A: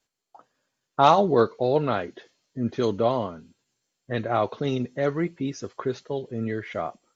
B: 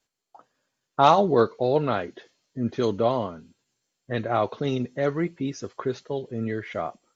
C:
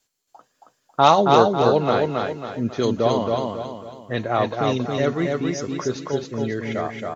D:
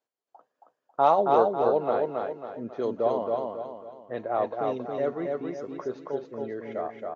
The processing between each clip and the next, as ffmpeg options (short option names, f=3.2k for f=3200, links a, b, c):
-af anull
-af "aemphasis=mode=production:type=cd,aecho=1:1:273|546|819|1092|1365:0.708|0.29|0.119|0.0488|0.02,volume=2.5dB"
-af "bandpass=f=610:t=q:w=1.1:csg=0,volume=-4dB"